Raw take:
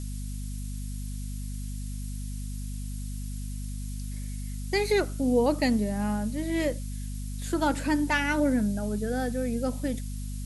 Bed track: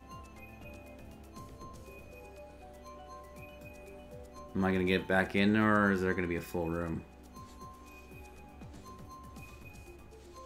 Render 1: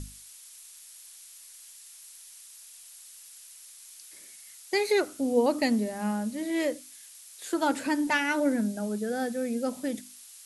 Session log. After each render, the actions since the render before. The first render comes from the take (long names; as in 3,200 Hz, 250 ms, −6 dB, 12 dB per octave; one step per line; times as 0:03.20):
mains-hum notches 50/100/150/200/250/300 Hz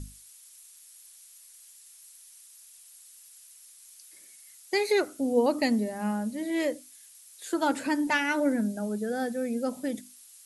broadband denoise 6 dB, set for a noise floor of −50 dBFS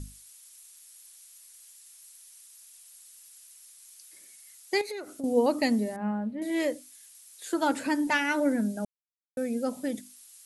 0:04.81–0:05.24: downward compressor 5 to 1, threshold −35 dBFS
0:05.96–0:06.42: high-frequency loss of the air 490 metres
0:08.85–0:09.37: silence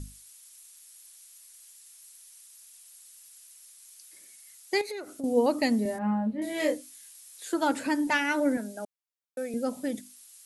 0:05.83–0:07.44: double-tracking delay 23 ms −2 dB
0:08.57–0:09.54: high-pass filter 370 Hz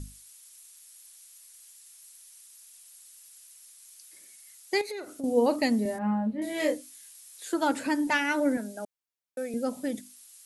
0:04.94–0:05.56: double-tracking delay 47 ms −13 dB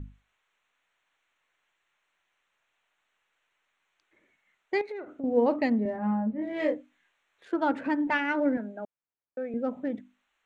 adaptive Wiener filter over 9 samples
low-pass filter 2,400 Hz 12 dB per octave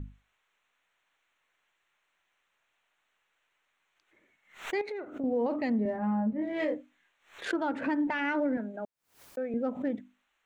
brickwall limiter −22 dBFS, peak gain reduction 9 dB
background raised ahead of every attack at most 140 dB per second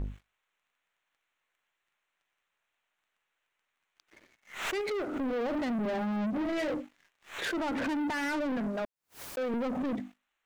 brickwall limiter −28.5 dBFS, peak gain reduction 9 dB
leveller curve on the samples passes 3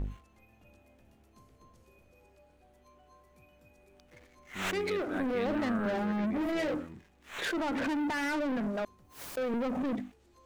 mix in bed track −11.5 dB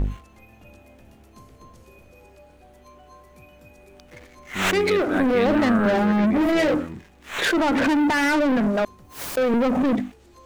level +12 dB